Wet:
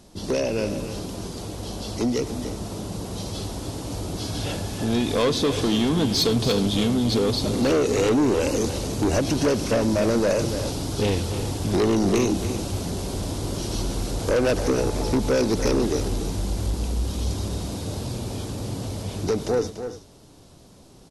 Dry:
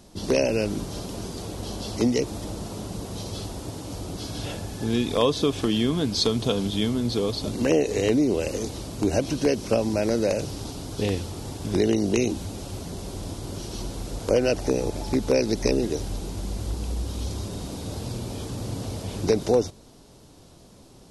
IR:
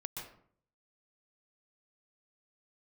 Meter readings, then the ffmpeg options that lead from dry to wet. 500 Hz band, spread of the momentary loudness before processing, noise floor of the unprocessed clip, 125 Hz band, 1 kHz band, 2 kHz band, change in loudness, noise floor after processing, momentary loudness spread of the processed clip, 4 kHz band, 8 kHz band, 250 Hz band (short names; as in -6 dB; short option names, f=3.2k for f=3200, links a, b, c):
+1.0 dB, 12 LU, -50 dBFS, +3.5 dB, +4.0 dB, +2.5 dB, +2.0 dB, -49 dBFS, 11 LU, +2.5 dB, +3.5 dB, +2.0 dB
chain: -filter_complex "[0:a]dynaudnorm=f=270:g=31:m=11.5dB,asoftclip=type=tanh:threshold=-16.5dB,asplit=2[a][b];[b]aecho=0:1:95|289|321|370:0.1|0.299|0.1|0.1[c];[a][c]amix=inputs=2:normalize=0,aresample=32000,aresample=44100"